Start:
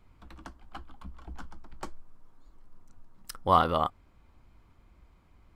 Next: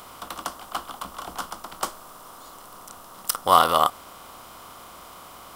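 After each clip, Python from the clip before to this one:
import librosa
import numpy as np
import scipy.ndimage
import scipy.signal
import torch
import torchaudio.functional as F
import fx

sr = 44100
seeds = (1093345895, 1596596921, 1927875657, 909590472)

y = fx.bin_compress(x, sr, power=0.6)
y = fx.riaa(y, sr, side='recording')
y = F.gain(torch.from_numpy(y), 4.5).numpy()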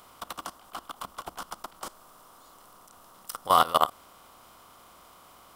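y = fx.level_steps(x, sr, step_db=18)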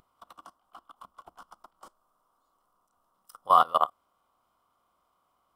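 y = fx.spectral_expand(x, sr, expansion=1.5)
y = F.gain(torch.from_numpy(y), -2.0).numpy()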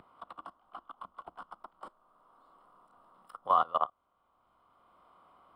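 y = scipy.signal.lfilter(np.full(7, 1.0 / 7), 1.0, x)
y = fx.band_squash(y, sr, depth_pct=40)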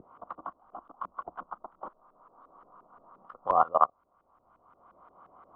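y = fx.filter_lfo_lowpass(x, sr, shape='saw_up', hz=5.7, low_hz=400.0, high_hz=1800.0, q=1.5)
y = F.gain(torch.from_numpy(y), 5.0).numpy()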